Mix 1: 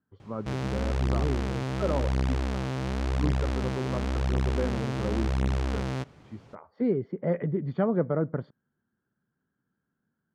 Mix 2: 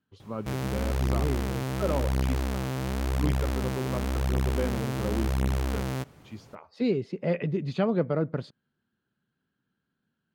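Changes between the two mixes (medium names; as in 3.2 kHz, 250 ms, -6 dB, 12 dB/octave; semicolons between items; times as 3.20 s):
speech: remove Savitzky-Golay filter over 41 samples; master: remove low-pass 6.1 kHz 12 dB/octave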